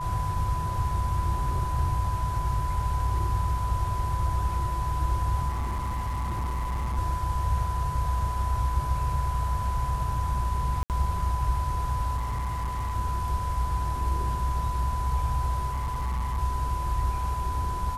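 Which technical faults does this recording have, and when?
tone 1000 Hz -31 dBFS
5.48–6.98 clipped -26 dBFS
10.83–10.9 gap 68 ms
12.16–12.95 clipped -26 dBFS
15.72–16.39 clipped -25.5 dBFS

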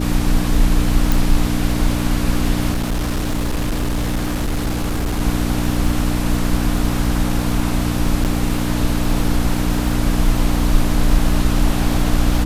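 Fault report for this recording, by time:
crackle 58/s -24 dBFS
hum 60 Hz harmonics 5 -21 dBFS
1.12 pop
2.73–5.21 clipped -16 dBFS
8.24–8.25 gap 8.5 ms

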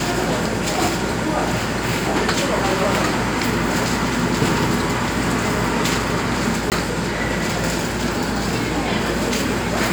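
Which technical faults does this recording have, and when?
6.7–6.72 gap 18 ms

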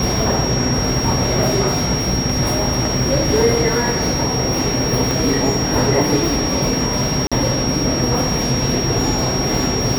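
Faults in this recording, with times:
tone 5600 Hz -22 dBFS
5.11 pop
7.27–7.32 gap 46 ms

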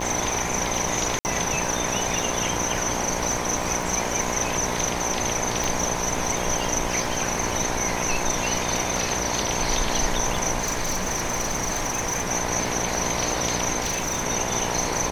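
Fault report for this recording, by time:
buzz 60 Hz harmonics 17 -30 dBFS
crackle 96/s -31 dBFS
1.19–1.25 gap 59 ms
5.64 pop
10.59–12.31 clipped -21 dBFS
13.8–14.27 clipped -21.5 dBFS

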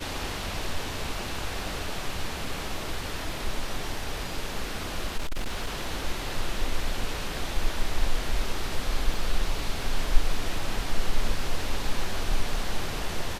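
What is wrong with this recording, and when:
5.17–5.89 clipped -24.5 dBFS
9.14 gap 2.4 ms

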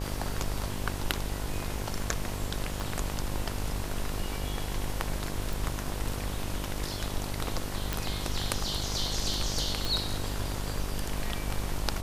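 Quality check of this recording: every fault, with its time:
buzz 50 Hz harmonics 22 -36 dBFS
2.8 pop
5.53 pop
7.93 pop
9.85 pop

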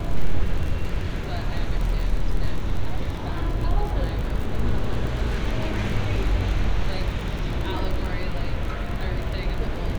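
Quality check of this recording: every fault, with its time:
crackle 33/s -28 dBFS

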